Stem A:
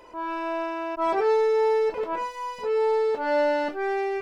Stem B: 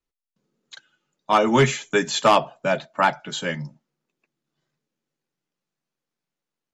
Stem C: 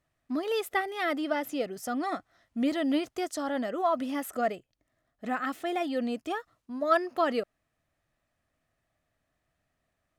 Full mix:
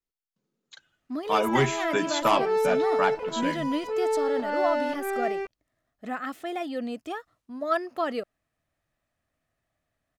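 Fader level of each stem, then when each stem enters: −3.0, −6.5, −1.5 decibels; 1.25, 0.00, 0.80 seconds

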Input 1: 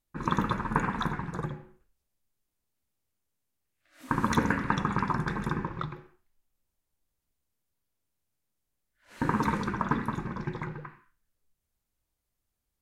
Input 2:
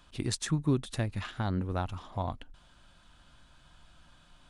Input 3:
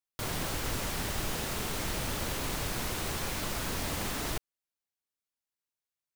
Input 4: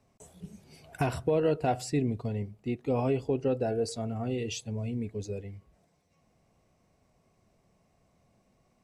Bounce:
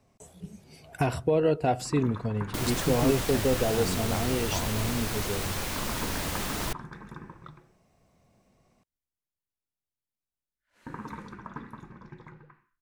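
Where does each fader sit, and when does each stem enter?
−12.5, −1.5, +2.0, +2.5 decibels; 1.65, 2.35, 2.35, 0.00 seconds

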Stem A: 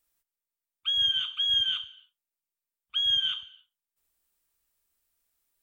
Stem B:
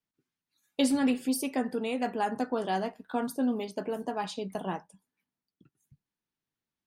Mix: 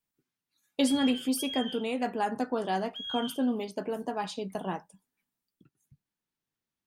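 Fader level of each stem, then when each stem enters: −13.5, 0.0 decibels; 0.00, 0.00 seconds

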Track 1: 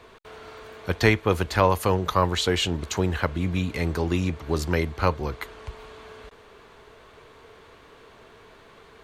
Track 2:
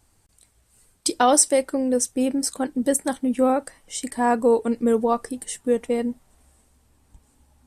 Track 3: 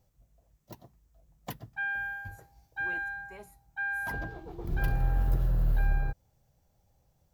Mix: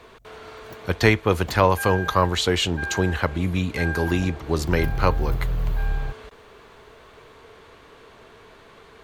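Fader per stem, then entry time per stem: +2.0 dB, muted, +2.0 dB; 0.00 s, muted, 0.00 s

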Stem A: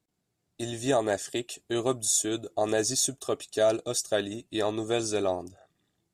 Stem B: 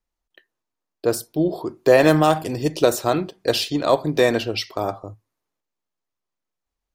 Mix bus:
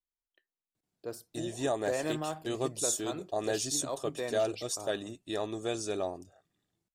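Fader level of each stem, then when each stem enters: −6.0, −19.5 decibels; 0.75, 0.00 seconds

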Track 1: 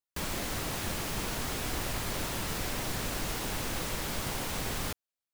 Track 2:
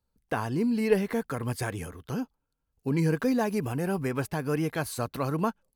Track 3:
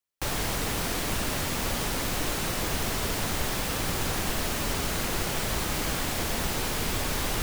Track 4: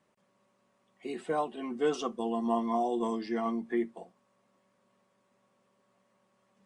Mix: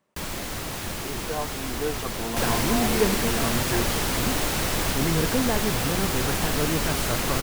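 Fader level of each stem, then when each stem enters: +2.5, 0.0, +3.0, −0.5 decibels; 0.00, 2.10, 2.15, 0.00 seconds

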